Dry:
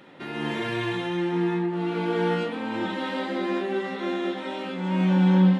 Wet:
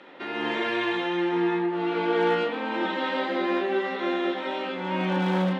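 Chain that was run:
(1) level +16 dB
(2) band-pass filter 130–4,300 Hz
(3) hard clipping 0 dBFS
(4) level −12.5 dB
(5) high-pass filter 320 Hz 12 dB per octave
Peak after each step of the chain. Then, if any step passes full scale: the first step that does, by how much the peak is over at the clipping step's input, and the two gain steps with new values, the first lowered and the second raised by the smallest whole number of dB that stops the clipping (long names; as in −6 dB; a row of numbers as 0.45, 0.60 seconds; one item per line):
+6.0, +5.0, 0.0, −12.5, −12.5 dBFS
step 1, 5.0 dB
step 1 +11 dB, step 4 −7.5 dB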